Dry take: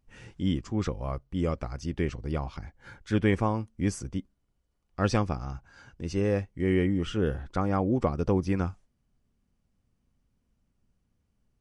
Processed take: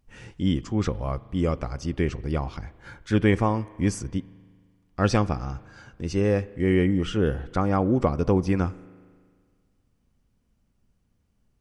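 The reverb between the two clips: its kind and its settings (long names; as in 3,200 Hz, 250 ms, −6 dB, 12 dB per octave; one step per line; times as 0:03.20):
spring reverb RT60 1.8 s, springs 38 ms, chirp 20 ms, DRR 19 dB
level +4 dB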